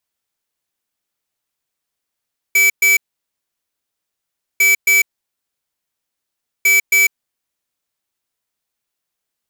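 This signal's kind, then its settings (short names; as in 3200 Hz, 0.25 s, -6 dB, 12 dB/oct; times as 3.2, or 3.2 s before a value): beep pattern square 2300 Hz, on 0.15 s, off 0.12 s, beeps 2, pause 1.63 s, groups 3, -11.5 dBFS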